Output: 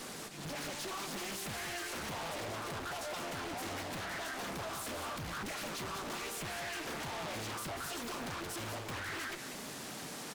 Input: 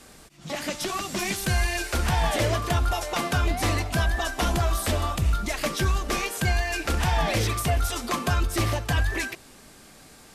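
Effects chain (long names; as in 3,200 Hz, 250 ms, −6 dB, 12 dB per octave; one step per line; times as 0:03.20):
high-pass filter 120 Hz 24 dB per octave
downward compressor, threshold −36 dBFS, peak gain reduction 14 dB
tube saturation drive 49 dB, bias 0.5
single-tap delay 191 ms −8.5 dB
highs frequency-modulated by the lows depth 1 ms
level +9.5 dB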